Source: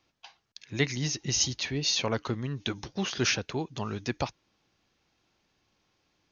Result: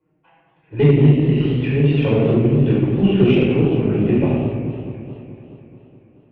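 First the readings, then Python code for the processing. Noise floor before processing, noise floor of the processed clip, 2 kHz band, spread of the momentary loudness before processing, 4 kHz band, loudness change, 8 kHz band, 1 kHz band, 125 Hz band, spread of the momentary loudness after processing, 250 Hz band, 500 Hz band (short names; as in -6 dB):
-74 dBFS, -59 dBFS, +3.5 dB, 9 LU, -4.0 dB, +13.5 dB, n/a, +5.0 dB, +19.5 dB, 17 LU, +19.0 dB, +17.5 dB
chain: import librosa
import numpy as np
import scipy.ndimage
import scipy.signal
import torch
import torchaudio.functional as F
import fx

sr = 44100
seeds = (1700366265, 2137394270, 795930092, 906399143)

y = fx.diode_clip(x, sr, knee_db=-18.0)
y = fx.highpass(y, sr, hz=130.0, slope=6)
y = fx.env_lowpass(y, sr, base_hz=1300.0, full_db=-25.0)
y = scipy.signal.sosfilt(scipy.signal.butter(8, 2900.0, 'lowpass', fs=sr, output='sos'), y)
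y = fx.low_shelf_res(y, sr, hz=570.0, db=9.0, q=1.5)
y = y + 10.0 ** (-10.0 / 20.0) * np.pad(y, (int(74 * sr / 1000.0), 0))[:len(y)]
y = fx.env_flanger(y, sr, rest_ms=6.5, full_db=-21.0)
y = fx.room_shoebox(y, sr, seeds[0], volume_m3=810.0, walls='mixed', distance_m=4.8)
y = fx.cheby_harmonics(y, sr, harmonics=(6,), levels_db=(-27,), full_scale_db=0.0)
y = fx.echo_warbled(y, sr, ms=214, feedback_pct=68, rate_hz=2.8, cents=187, wet_db=-12.0)
y = y * librosa.db_to_amplitude(-1.0)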